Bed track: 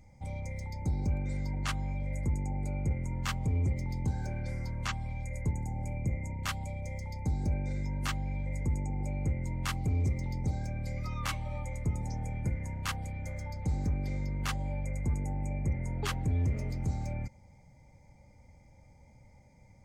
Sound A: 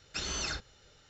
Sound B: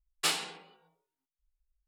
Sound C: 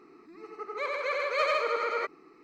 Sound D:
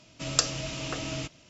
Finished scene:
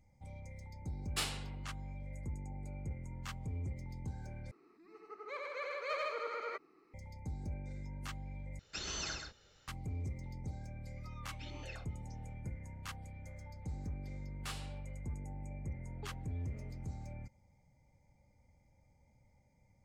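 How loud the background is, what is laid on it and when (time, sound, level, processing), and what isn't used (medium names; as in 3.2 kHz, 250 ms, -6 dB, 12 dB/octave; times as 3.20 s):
bed track -11 dB
0.93 s: add B -8 dB
4.51 s: replace with C -11 dB
8.59 s: replace with A -6 dB + delay 129 ms -5.5 dB
11.25 s: add A + stepped vowel filter 7.9 Hz
14.22 s: add B -15.5 dB + peak limiter -19.5 dBFS
not used: D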